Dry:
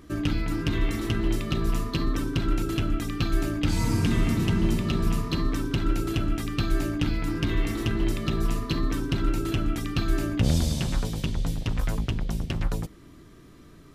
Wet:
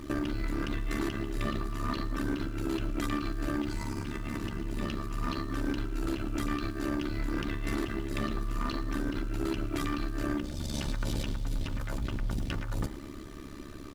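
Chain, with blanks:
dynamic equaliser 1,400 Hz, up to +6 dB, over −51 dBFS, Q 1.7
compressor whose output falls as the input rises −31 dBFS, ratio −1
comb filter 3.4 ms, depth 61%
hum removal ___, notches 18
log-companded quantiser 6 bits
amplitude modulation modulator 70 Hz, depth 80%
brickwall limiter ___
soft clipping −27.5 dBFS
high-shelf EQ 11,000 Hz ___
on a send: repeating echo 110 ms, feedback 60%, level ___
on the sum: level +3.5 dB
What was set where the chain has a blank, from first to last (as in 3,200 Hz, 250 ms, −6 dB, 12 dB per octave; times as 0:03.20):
74.99 Hz, −20.5 dBFS, −6.5 dB, −21 dB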